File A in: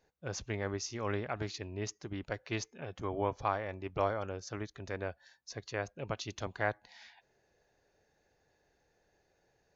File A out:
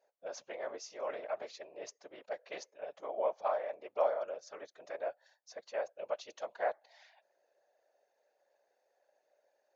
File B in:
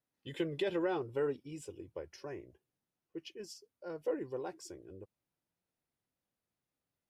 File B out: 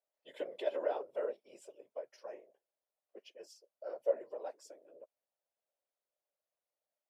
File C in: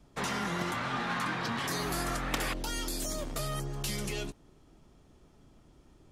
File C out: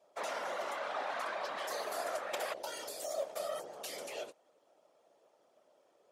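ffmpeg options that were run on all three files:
-af "afftfilt=real='hypot(re,im)*cos(2*PI*random(0))':imag='hypot(re,im)*sin(2*PI*random(1))':win_size=512:overlap=0.75,highpass=frequency=590:width_type=q:width=4.9,volume=-2dB"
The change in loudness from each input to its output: −1.0, −0.5, −5.5 LU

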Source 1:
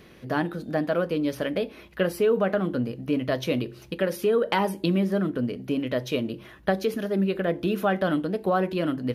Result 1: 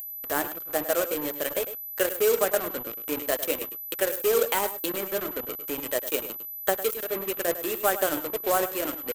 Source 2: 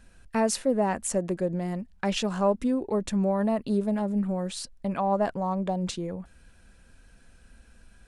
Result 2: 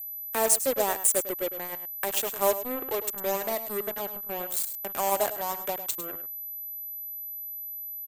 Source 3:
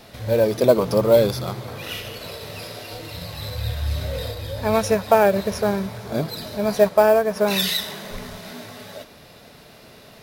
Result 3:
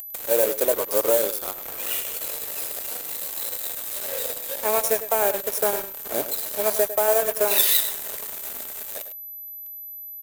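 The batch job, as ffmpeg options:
-af "agate=range=-11dB:threshold=-42dB:ratio=16:detection=peak,highpass=frequency=340:width=0.5412,highpass=frequency=340:width=1.3066,acompressor=mode=upward:threshold=-30dB:ratio=2.5,alimiter=limit=-12dB:level=0:latency=1:release=448,acrusher=bits=4:mix=0:aa=0.5,aecho=1:1:103:0.316,aeval=exprs='val(0)+0.00562*sin(2*PI*12000*n/s)':channel_layout=same,aeval=exprs='0.316*(cos(1*acos(clip(val(0)/0.316,-1,1)))-cos(1*PI/2))+0.0158*(cos(7*acos(clip(val(0)/0.316,-1,1)))-cos(7*PI/2))':channel_layout=same,aexciter=amount=4.1:drive=5.6:freq=7000"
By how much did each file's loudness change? −1.0, −0.5, −2.0 LU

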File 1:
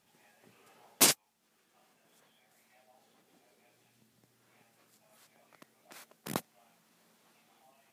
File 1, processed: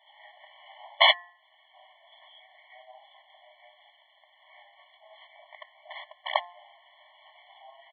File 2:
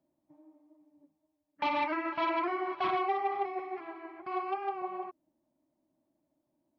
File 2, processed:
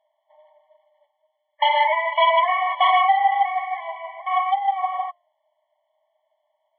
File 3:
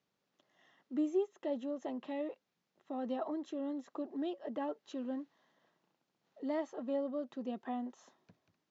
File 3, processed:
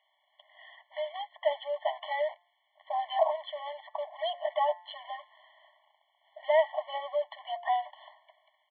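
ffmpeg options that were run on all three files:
-filter_complex "[0:a]acrossover=split=2100[link_01][link_02];[link_01]highpass=frequency=94:width=0.5412,highpass=frequency=94:width=1.3066[link_03];[link_02]acontrast=22[link_04];[link_03][link_04]amix=inputs=2:normalize=0,bandreject=frequency=175.7:width_type=h:width=4,bandreject=frequency=351.4:width_type=h:width=4,bandreject=frequency=527.1:width_type=h:width=4,bandreject=frequency=702.8:width_type=h:width=4,bandreject=frequency=878.5:width_type=h:width=4,bandreject=frequency=1054.2:width_type=h:width=4,bandreject=frequency=1229.9:width_type=h:width=4,bandreject=frequency=1405.6:width_type=h:width=4,bandreject=frequency=1581.3:width_type=h:width=4,bandreject=frequency=1757:width_type=h:width=4,bandreject=frequency=1932.7:width_type=h:width=4,asplit=2[link_05][link_06];[link_06]acrusher=bits=3:mode=log:mix=0:aa=0.000001,volume=-4dB[link_07];[link_05][link_07]amix=inputs=2:normalize=0,apsyclip=10.5dB,aresample=8000,aresample=44100,afftfilt=real='re*eq(mod(floor(b*sr/1024/580),2),1)':imag='im*eq(mod(floor(b*sr/1024/580),2),1)':win_size=1024:overlap=0.75"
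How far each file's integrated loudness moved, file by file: +4.5, +13.0, +7.0 LU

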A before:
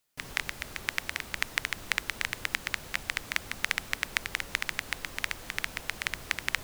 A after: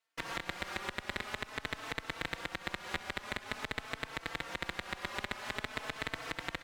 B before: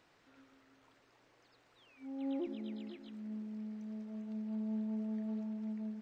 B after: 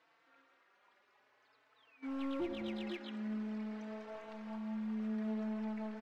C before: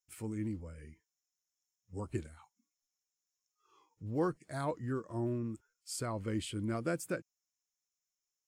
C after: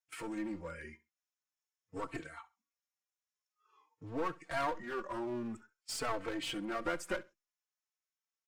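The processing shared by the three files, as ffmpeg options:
-filter_complex "[0:a]agate=range=-14dB:threshold=-54dB:ratio=16:detection=peak,acompressor=threshold=-38dB:ratio=6,alimiter=limit=-22dB:level=0:latency=1:release=116,bandpass=frequency=1400:width_type=q:width=0.7:csg=0,aeval=exprs='clip(val(0),-1,0.00224)':channel_layout=same,aecho=1:1:66|132:0.1|0.021,asplit=2[link_01][link_02];[link_02]adelay=4,afreqshift=0.48[link_03];[link_01][link_03]amix=inputs=2:normalize=1,volume=17.5dB"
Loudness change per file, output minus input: −6.5, 0.0, −1.0 LU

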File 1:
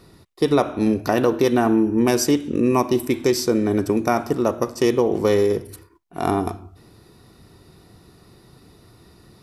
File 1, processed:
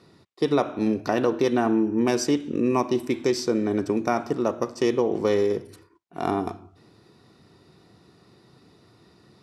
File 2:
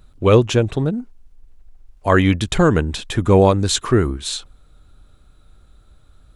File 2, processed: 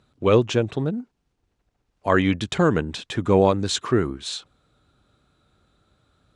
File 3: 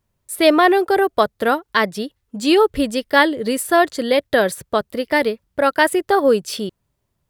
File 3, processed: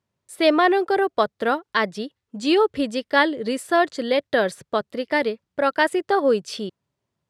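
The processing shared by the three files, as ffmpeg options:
-af "highpass=120,lowpass=6800,volume=-4dB"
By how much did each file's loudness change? −4.0, −4.5, −4.0 LU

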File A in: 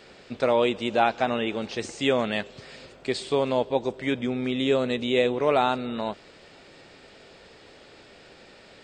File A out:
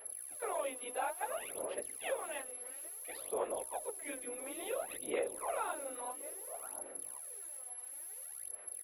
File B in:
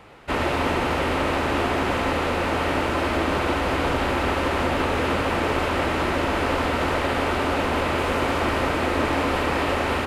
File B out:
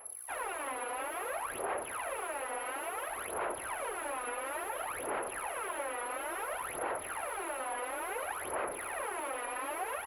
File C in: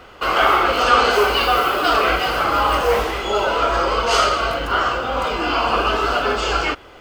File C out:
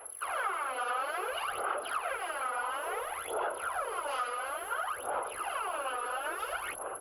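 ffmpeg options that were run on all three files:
-filter_complex "[0:a]afftfilt=real='hypot(re,im)*cos(2*PI*random(0))':imag='hypot(re,im)*sin(2*PI*random(1))':win_size=512:overlap=0.75,bandreject=frequency=299.4:width_type=h:width=4,bandreject=frequency=598.8:width_type=h:width=4,bandreject=frequency=898.2:width_type=h:width=4,bandreject=frequency=1197.6:width_type=h:width=4,bandreject=frequency=1497:width_type=h:width=4,bandreject=frequency=1796.4:width_type=h:width=4,acrossover=split=100|920|7900[link_01][link_02][link_03][link_04];[link_02]volume=22dB,asoftclip=hard,volume=-22dB[link_05];[link_01][link_05][link_03][link_04]amix=inputs=4:normalize=0,acrossover=split=380 2700:gain=0.0794 1 0.0891[link_06][link_07][link_08];[link_06][link_07][link_08]amix=inputs=3:normalize=0,asplit=2[link_09][link_10];[link_10]adelay=1064,lowpass=frequency=960:poles=1,volume=-10dB,asplit=2[link_11][link_12];[link_12]adelay=1064,lowpass=frequency=960:poles=1,volume=0.15[link_13];[link_09][link_11][link_13]amix=inputs=3:normalize=0,aeval=exprs='val(0)+0.0112*sin(2*PI*11000*n/s)':channel_layout=same,aphaser=in_gain=1:out_gain=1:delay=4.2:decay=0.74:speed=0.58:type=sinusoidal,equalizer=frequency=160:width=0.69:gain=-4.5,afreqshift=20,acompressor=threshold=-24dB:ratio=2.5,volume=-9dB"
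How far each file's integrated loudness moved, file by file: −15.0, −14.5, −17.0 LU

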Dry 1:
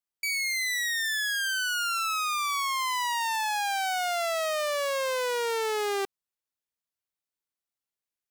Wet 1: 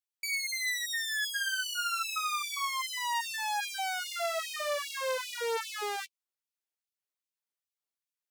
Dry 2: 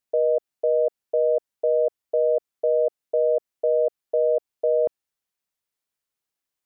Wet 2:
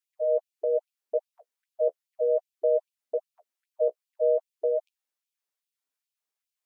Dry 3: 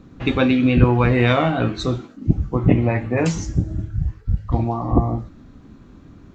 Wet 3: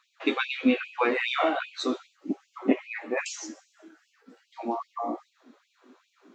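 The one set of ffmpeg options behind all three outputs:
-af "flanger=delay=7.8:depth=8.2:regen=-16:speed=0.37:shape=triangular,afftfilt=real='re*gte(b*sr/1024,210*pow(2400/210,0.5+0.5*sin(2*PI*2.5*pts/sr)))':imag='im*gte(b*sr/1024,210*pow(2400/210,0.5+0.5*sin(2*PI*2.5*pts/sr)))':win_size=1024:overlap=0.75"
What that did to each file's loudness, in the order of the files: −4.5, −5.5, −9.5 LU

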